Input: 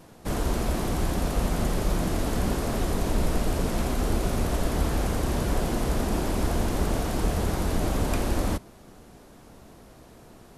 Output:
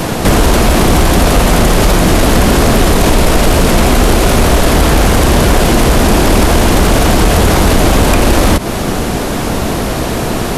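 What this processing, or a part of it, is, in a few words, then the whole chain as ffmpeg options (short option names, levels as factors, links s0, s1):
mastering chain: -filter_complex "[0:a]equalizer=f=2700:t=o:w=1.4:g=3,acrossover=split=330|1300[s0][s1][s2];[s0]acompressor=threshold=0.0282:ratio=4[s3];[s1]acompressor=threshold=0.0141:ratio=4[s4];[s2]acompressor=threshold=0.01:ratio=4[s5];[s3][s4][s5]amix=inputs=3:normalize=0,acompressor=threshold=0.0126:ratio=1.5,asoftclip=type=tanh:threshold=0.0473,asoftclip=type=hard:threshold=0.0316,alimiter=level_in=59.6:limit=0.891:release=50:level=0:latency=1,volume=0.891"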